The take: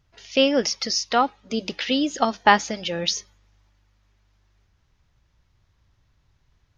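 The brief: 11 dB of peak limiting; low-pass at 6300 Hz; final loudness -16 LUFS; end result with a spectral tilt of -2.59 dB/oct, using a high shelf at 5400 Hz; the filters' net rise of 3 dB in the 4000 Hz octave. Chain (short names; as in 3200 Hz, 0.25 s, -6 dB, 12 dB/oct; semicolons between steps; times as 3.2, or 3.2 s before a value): LPF 6300 Hz; bell 4000 Hz +7 dB; high shelf 5400 Hz -4.5 dB; gain +8.5 dB; limiter -2.5 dBFS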